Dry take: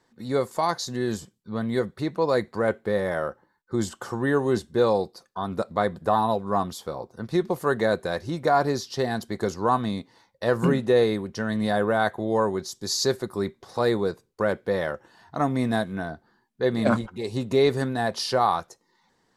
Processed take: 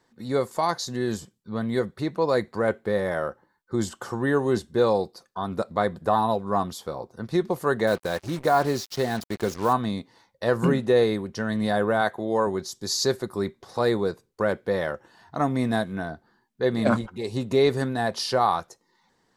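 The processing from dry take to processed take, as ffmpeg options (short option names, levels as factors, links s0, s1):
-filter_complex "[0:a]asettb=1/sr,asplit=3[s0][s1][s2];[s0]atrim=end=7.874[s3];[s1]atrim=start=7.87:end=9.73,asetpts=PTS-STARTPTS,afade=t=in:d=0.004:c=qsin,afade=t=out:st=1.856:d=0.004:c=qsin,acrusher=bits=5:mix=0:aa=0.5[s4];[s2]atrim=start=9.726[s5];[s3][s4]acrossfade=d=0.004:c1=hsin:c2=qsin[s6];[s6][s5]acrossfade=d=0.004:c1=qsin:c2=hsin,asettb=1/sr,asplit=3[s7][s8][s9];[s7]atrim=end=12.014[s10];[s8]atrim=start=12.01:end=12.47,asetpts=PTS-STARTPTS,afade=t=in:d=0.004:c=qsin,afade=t=out:st=0.456:d=0.004:c=qsin,highpass=f=160:p=1[s11];[s9]atrim=start=12.466[s12];[s10][s11]acrossfade=d=0.004:c1=hsin:c2=qsin[s13];[s13][s12]acrossfade=d=0.004:c1=qsin:c2=hsin"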